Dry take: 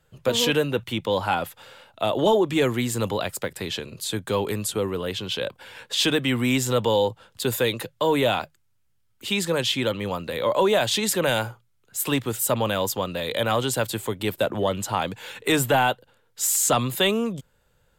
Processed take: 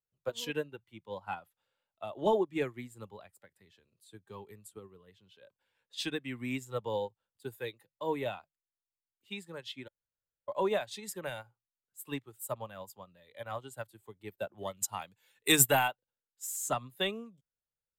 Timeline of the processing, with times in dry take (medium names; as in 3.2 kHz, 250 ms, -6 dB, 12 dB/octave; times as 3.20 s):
9.88–10.48 s: room tone
14.58–15.88 s: treble shelf 3.2 kHz +11.5 dB
whole clip: spectral noise reduction 8 dB; upward expansion 2.5:1, over -31 dBFS; trim -4 dB